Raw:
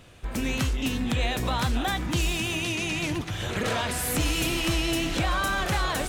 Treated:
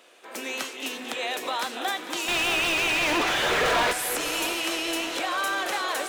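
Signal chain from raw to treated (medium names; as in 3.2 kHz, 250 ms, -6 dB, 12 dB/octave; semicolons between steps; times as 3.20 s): high-pass 360 Hz 24 dB/octave; 2.28–3.93 s: overdrive pedal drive 37 dB, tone 2.1 kHz, clips at -15 dBFS; two-band feedback delay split 1.7 kHz, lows 620 ms, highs 223 ms, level -11.5 dB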